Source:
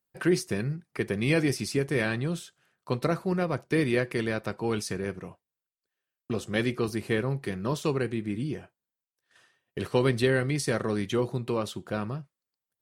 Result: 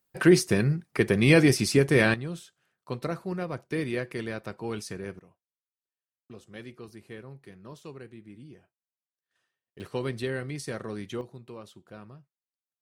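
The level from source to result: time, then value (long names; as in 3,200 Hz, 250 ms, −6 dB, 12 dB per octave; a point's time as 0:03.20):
+6 dB
from 0:02.14 −5 dB
from 0:05.19 −16 dB
from 0:09.80 −7.5 dB
from 0:11.21 −14.5 dB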